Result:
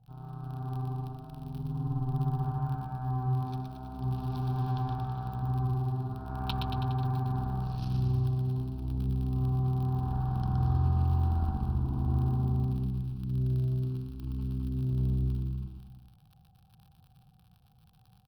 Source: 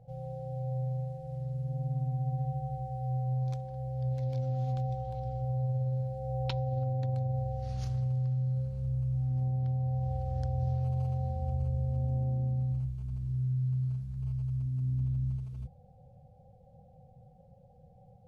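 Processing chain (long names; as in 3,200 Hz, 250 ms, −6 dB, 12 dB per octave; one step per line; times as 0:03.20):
surface crackle 40 per second −42 dBFS
harmonic generator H 4 −24 dB, 7 −21 dB, 8 −28 dB, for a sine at −20 dBFS
phaser with its sweep stopped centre 2,000 Hz, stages 6
on a send: bouncing-ball delay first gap 120 ms, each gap 0.9×, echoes 5
on the sum: level +4 dB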